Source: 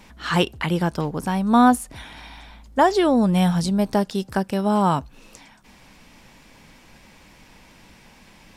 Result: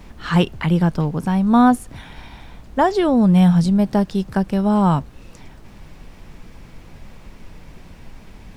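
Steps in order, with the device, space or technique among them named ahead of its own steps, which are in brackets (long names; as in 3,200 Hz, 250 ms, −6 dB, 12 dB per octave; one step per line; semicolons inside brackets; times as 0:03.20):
car interior (parametric band 160 Hz +7.5 dB 0.94 octaves; high-shelf EQ 4,200 Hz −6 dB; brown noise bed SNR 19 dB)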